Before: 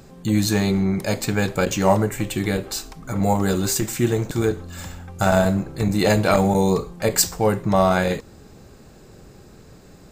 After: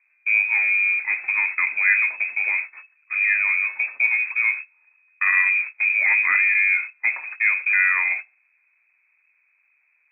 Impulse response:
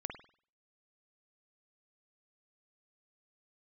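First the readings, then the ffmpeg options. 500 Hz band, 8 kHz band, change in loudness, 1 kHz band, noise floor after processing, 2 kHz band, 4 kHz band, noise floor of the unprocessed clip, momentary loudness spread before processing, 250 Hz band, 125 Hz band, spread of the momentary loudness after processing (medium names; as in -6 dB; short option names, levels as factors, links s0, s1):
under -30 dB, under -40 dB, +2.0 dB, -12.0 dB, -66 dBFS, +13.5 dB, under -40 dB, -47 dBFS, 8 LU, under -40 dB, under -40 dB, 7 LU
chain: -filter_complex "[0:a]aeval=exprs='val(0)+0.5*0.0316*sgn(val(0))':c=same,agate=range=0.0355:threshold=0.0562:ratio=16:detection=peak,asplit=2[s0][s1];[1:a]atrim=start_sample=2205,lowshelf=f=470:g=-11.5[s2];[s1][s2]afir=irnorm=-1:irlink=0,volume=0.141[s3];[s0][s3]amix=inputs=2:normalize=0,lowpass=f=2200:t=q:w=0.5098,lowpass=f=2200:t=q:w=0.6013,lowpass=f=2200:t=q:w=0.9,lowpass=f=2200:t=q:w=2.563,afreqshift=-2600,aderivative,volume=2.51"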